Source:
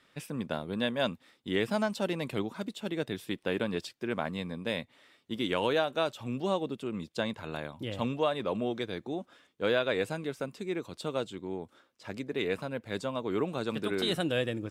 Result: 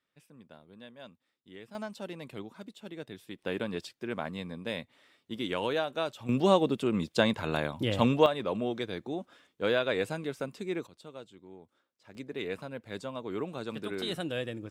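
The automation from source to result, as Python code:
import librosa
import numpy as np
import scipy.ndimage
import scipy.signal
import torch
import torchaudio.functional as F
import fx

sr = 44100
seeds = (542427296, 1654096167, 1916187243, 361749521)

y = fx.gain(x, sr, db=fx.steps((0.0, -19.0), (1.75, -9.0), (3.39, -2.5), (6.29, 7.0), (8.26, 0.0), (10.87, -13.0), (12.15, -4.5)))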